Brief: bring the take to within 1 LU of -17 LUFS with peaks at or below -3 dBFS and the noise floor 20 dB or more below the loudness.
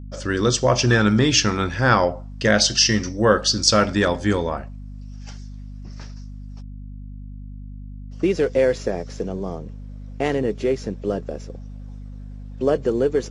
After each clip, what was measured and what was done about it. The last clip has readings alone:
hum 50 Hz; harmonics up to 250 Hz; hum level -33 dBFS; loudness -20.0 LUFS; peak -1.0 dBFS; loudness target -17.0 LUFS
-> notches 50/100/150/200/250 Hz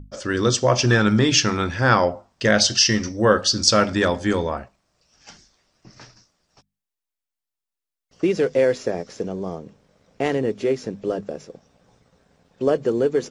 hum none; loudness -20.0 LUFS; peak -1.0 dBFS; loudness target -17.0 LUFS
-> gain +3 dB; limiter -3 dBFS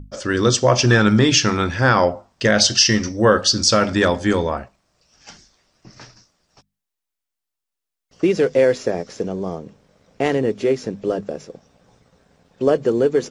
loudness -17.5 LUFS; peak -3.0 dBFS; noise floor -83 dBFS

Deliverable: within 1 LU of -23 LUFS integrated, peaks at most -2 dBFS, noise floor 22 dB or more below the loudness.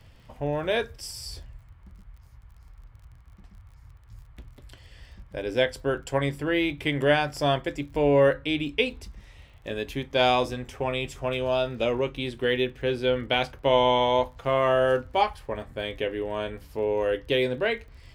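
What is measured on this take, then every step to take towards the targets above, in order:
ticks 33/s; loudness -26.0 LUFS; peak -7.5 dBFS; loudness target -23.0 LUFS
-> de-click; gain +3 dB

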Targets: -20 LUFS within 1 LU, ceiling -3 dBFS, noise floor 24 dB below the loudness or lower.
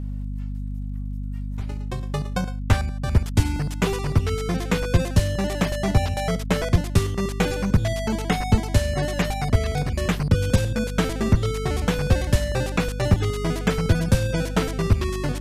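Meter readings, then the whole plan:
ticks 26/s; hum 50 Hz; harmonics up to 250 Hz; hum level -26 dBFS; loudness -24.0 LUFS; peak -5.0 dBFS; loudness target -20.0 LUFS
-> de-click; notches 50/100/150/200/250 Hz; gain +4 dB; limiter -3 dBFS

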